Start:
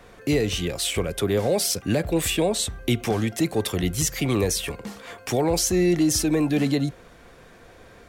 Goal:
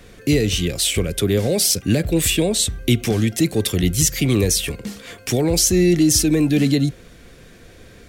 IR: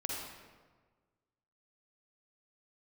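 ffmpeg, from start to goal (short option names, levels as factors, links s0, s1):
-af "equalizer=f=910:t=o:w=1.6:g=-13,volume=2.37"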